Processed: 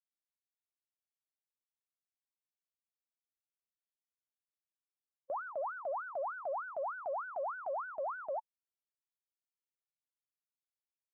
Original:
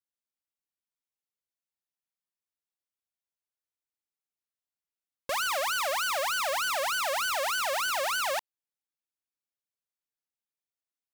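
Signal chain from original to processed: spectral contrast raised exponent 3.6; inverse Chebyshev low-pass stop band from 4000 Hz, stop band 60 dB; gate with hold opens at -27 dBFS; gain -6 dB

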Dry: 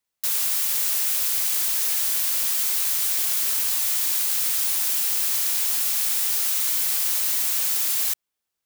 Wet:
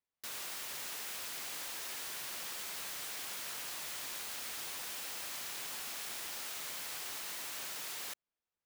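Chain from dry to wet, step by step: LPF 1900 Hz 6 dB/oct; gain -6 dB

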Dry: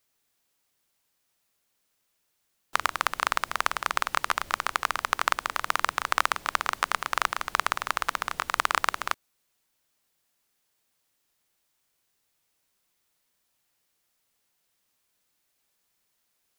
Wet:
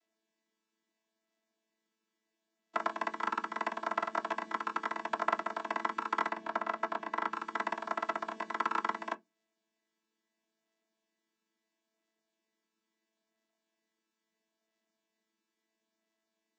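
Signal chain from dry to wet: chord vocoder bare fifth, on A3; 6.29–7.33 high shelf 5500 Hz -10 dB; on a send: reverb RT60 0.15 s, pre-delay 3 ms, DRR 8 dB; on the sum: gain -6.5 dB

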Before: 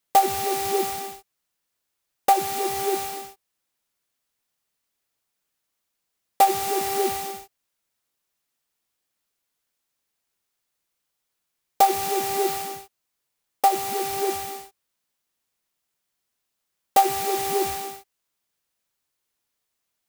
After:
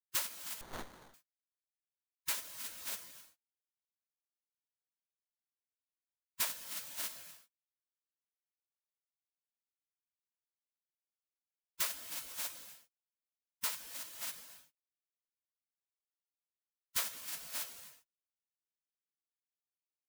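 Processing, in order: spectral gate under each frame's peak -30 dB weak; 0.61–1.14 running maximum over 17 samples; gain -5.5 dB

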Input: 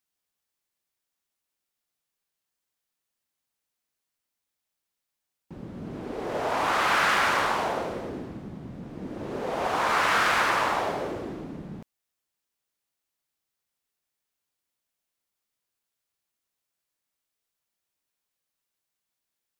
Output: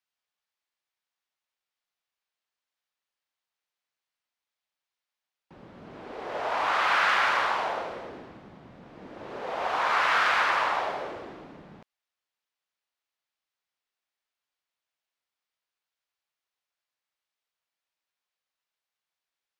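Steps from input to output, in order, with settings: three-band isolator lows -12 dB, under 530 Hz, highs -14 dB, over 5200 Hz

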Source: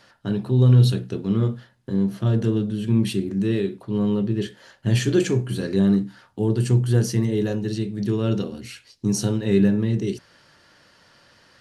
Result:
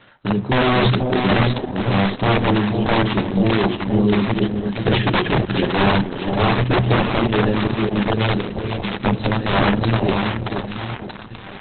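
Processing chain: 4.35–4.93 HPF 80 Hz 24 dB/oct; notches 50/100/150 Hz; dynamic EQ 5100 Hz, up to +5 dB, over -55 dBFS, Q 7.8; in parallel at -1 dB: compressor 12:1, threshold -29 dBFS, peak gain reduction 19 dB; on the sum: wrapped overs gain 12.5 dB; split-band echo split 790 Hz, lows 0.484 s, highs 0.63 s, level -4.5 dB; spring tank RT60 1.6 s, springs 33/57 ms, chirp 65 ms, DRR 16.5 dB; gain +3 dB; Opus 8 kbps 48000 Hz

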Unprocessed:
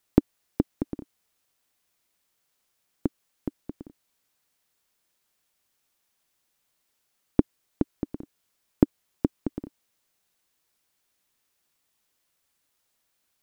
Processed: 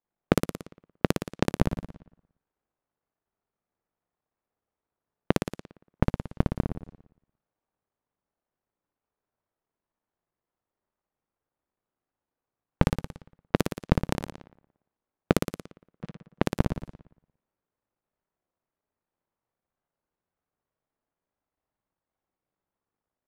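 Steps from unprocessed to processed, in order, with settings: cycle switcher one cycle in 3, muted; speed mistake 78 rpm record played at 45 rpm; sample leveller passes 5; in parallel at -10 dB: soft clip -14.5 dBFS, distortion -10 dB; on the sum: flipped gate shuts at -15 dBFS, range -26 dB; on a send: flutter echo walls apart 9.9 m, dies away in 0.76 s; on the sum: low-pass opened by the level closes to 1000 Hz, open at -30.5 dBFS; gain +2.5 dB

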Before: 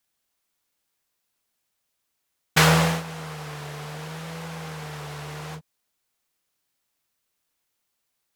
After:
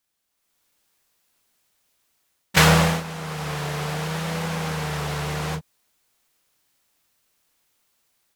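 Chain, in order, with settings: AGC gain up to 9 dB; harmoniser -12 st -13 dB, +3 st -13 dB; gain -1 dB

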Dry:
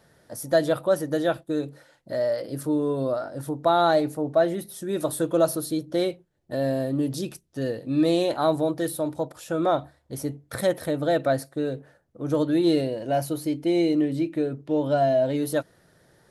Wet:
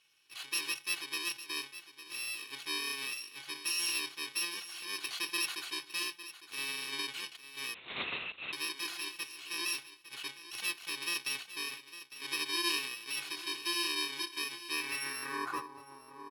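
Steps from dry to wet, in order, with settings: FFT order left unsorted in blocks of 64 samples; comb 2.7 ms, depth 50%; feedback echo 0.855 s, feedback 17%, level -13.5 dB; 7.74–8.53 LPC vocoder at 8 kHz whisper; band-pass sweep 3000 Hz -> 950 Hz, 14.68–15.74; gain +3.5 dB

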